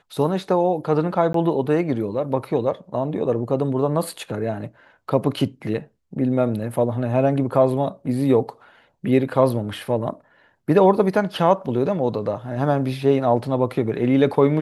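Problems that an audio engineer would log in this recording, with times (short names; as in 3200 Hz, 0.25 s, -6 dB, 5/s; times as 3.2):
1.33–1.34 gap 13 ms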